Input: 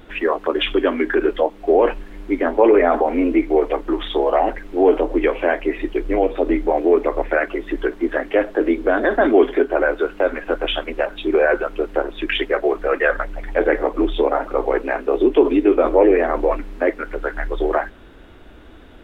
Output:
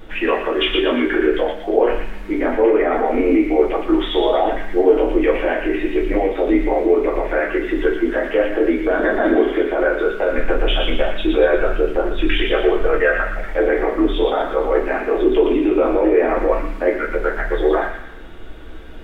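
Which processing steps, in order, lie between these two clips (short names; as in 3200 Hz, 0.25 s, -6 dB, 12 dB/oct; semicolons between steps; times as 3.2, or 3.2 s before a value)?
10.35–12.98 low shelf 130 Hz +10 dB; limiter -12 dBFS, peak gain reduction 9.5 dB; thin delay 0.117 s, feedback 45%, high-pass 1800 Hz, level -3 dB; reverb RT60 0.45 s, pre-delay 5 ms, DRR -1 dB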